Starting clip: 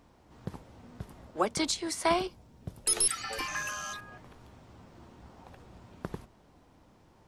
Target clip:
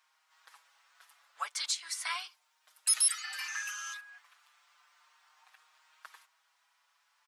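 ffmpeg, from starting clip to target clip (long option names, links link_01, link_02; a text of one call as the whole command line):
ffmpeg -i in.wav -filter_complex "[0:a]highpass=frequency=1200:width=0.5412,highpass=frequency=1200:width=1.3066,asplit=2[link_01][link_02];[link_02]adelay=5.9,afreqshift=0.34[link_03];[link_01][link_03]amix=inputs=2:normalize=1,volume=2dB" out.wav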